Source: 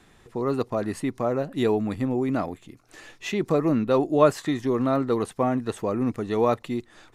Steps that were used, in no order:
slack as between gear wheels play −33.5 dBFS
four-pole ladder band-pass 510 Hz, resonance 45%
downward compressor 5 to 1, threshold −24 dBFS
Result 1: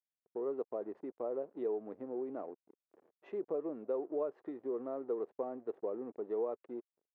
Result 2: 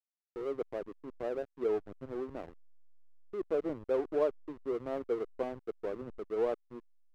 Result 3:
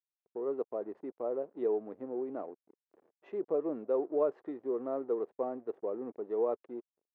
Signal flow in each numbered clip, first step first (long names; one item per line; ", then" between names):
slack as between gear wheels, then downward compressor, then four-pole ladder band-pass
four-pole ladder band-pass, then slack as between gear wheels, then downward compressor
slack as between gear wheels, then four-pole ladder band-pass, then downward compressor